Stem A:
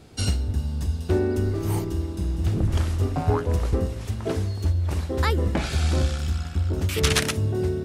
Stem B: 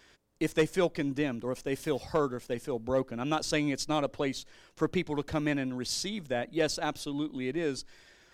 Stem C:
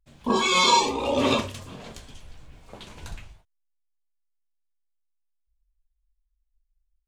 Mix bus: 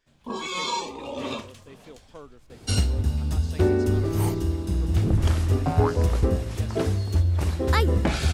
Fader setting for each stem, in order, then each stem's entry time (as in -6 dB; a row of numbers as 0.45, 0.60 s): +1.5, -16.0, -9.5 dB; 2.50, 0.00, 0.00 s